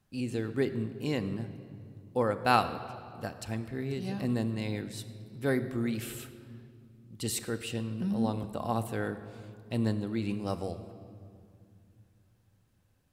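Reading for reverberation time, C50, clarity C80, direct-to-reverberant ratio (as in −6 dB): 2.3 s, 12.0 dB, 13.0 dB, 8.5 dB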